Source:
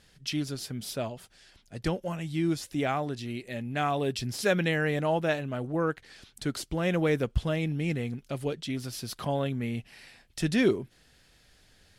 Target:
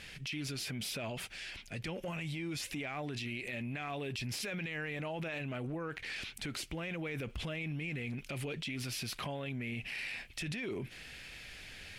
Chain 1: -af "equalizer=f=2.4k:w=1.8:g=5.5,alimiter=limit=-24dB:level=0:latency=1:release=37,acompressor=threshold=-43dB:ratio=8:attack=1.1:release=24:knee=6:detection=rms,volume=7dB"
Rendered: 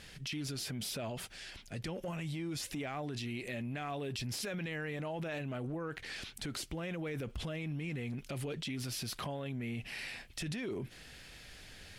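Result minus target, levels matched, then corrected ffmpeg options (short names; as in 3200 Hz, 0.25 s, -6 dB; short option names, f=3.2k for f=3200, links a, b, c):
2000 Hz band -3.5 dB
-af "equalizer=f=2.4k:w=1.8:g=14,alimiter=limit=-24dB:level=0:latency=1:release=37,acompressor=threshold=-43dB:ratio=8:attack=1.1:release=24:knee=6:detection=rms,volume=7dB"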